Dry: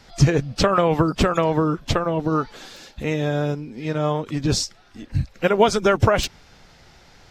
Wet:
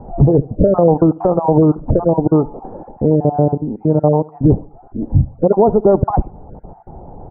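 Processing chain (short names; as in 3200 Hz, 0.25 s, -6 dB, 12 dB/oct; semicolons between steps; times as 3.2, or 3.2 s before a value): random spectral dropouts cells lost 24%; elliptic low-pass 860 Hz, stop band 80 dB; compressor 1.5:1, threshold -40 dBFS, peak gain reduction 10.5 dB; on a send: feedback echo 71 ms, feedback 37%, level -22 dB; on the sum: maximiser +19.5 dB; gain -1 dB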